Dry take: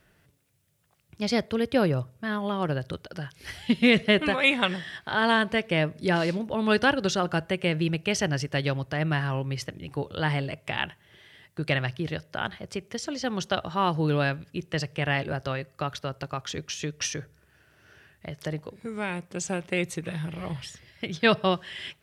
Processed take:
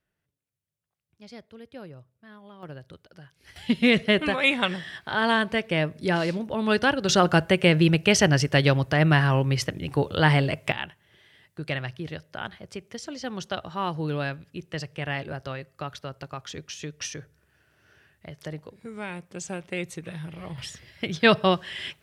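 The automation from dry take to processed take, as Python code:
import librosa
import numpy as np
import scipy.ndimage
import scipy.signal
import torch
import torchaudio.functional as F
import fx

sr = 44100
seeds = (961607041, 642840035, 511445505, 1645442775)

y = fx.gain(x, sr, db=fx.steps((0.0, -19.0), (2.63, -12.5), (3.56, 0.0), (7.09, 7.0), (10.72, -4.0), (20.58, 3.0)))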